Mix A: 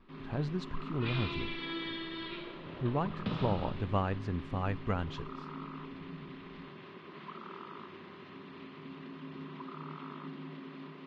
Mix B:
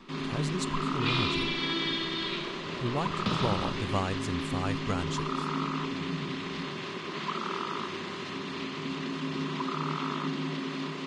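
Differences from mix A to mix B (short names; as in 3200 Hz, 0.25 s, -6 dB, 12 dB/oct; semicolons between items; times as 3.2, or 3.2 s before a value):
first sound +11.0 dB; second sound +3.5 dB; master: remove air absorption 310 m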